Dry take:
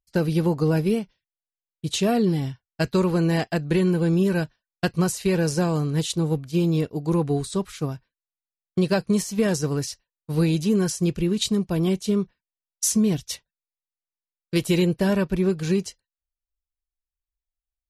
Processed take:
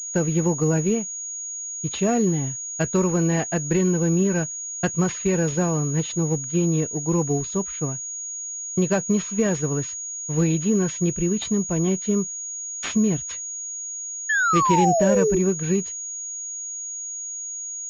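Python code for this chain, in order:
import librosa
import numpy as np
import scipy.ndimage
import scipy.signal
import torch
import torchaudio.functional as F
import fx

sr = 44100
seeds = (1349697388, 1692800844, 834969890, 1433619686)

y = fx.spec_paint(x, sr, seeds[0], shape='fall', start_s=14.29, length_s=1.1, low_hz=360.0, high_hz=1800.0, level_db=-20.0)
y = fx.pwm(y, sr, carrier_hz=6700.0)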